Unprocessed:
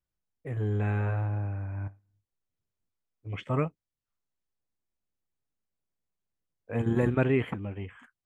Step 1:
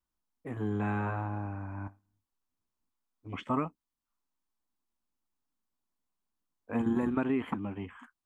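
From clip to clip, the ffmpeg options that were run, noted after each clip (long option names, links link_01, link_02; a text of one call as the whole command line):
ffmpeg -i in.wav -af "equalizer=frequency=125:width_type=o:width=1:gain=-11,equalizer=frequency=250:width_type=o:width=1:gain=9,equalizer=frequency=500:width_type=o:width=1:gain=-7,equalizer=frequency=1000:width_type=o:width=1:gain=9,equalizer=frequency=2000:width_type=o:width=1:gain=-4,acompressor=threshold=-25dB:ratio=10" out.wav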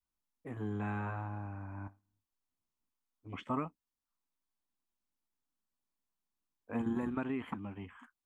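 ffmpeg -i in.wav -af "adynamicequalizer=threshold=0.00708:dfrequency=390:dqfactor=0.89:tfrequency=390:tqfactor=0.89:attack=5:release=100:ratio=0.375:range=2.5:mode=cutabove:tftype=bell,volume=-4.5dB" out.wav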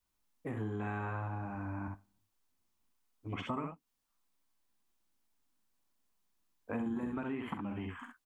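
ffmpeg -i in.wav -af "aecho=1:1:44|65:0.299|0.531,acompressor=threshold=-43dB:ratio=4,volume=7dB" out.wav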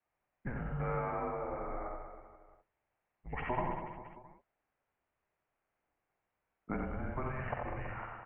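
ffmpeg -i in.wav -af "highpass=frequency=320:width_type=q:width=0.5412,highpass=frequency=320:width_type=q:width=1.307,lowpass=frequency=2600:width_type=q:width=0.5176,lowpass=frequency=2600:width_type=q:width=0.7071,lowpass=frequency=2600:width_type=q:width=1.932,afreqshift=-270,aecho=1:1:90|198|327.6|483.1|669.7:0.631|0.398|0.251|0.158|0.1,volume=4dB" out.wav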